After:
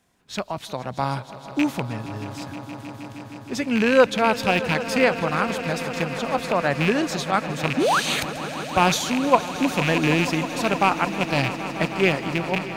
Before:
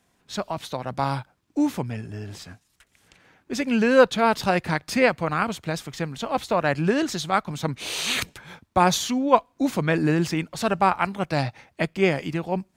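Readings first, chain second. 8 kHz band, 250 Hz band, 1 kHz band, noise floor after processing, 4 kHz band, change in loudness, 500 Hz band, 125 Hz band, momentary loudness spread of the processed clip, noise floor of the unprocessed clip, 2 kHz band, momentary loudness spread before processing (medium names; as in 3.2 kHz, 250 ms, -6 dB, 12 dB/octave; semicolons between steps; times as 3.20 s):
+1.0 dB, +1.0 dB, +1.0 dB, -41 dBFS, +2.5 dB, +1.5 dB, +1.0 dB, +0.5 dB, 13 LU, -68 dBFS, +3.5 dB, 12 LU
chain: rattle on loud lows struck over -26 dBFS, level -13 dBFS; painted sound rise, 7.77–8.00 s, 230–1800 Hz -19 dBFS; echo with a slow build-up 157 ms, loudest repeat 5, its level -16.5 dB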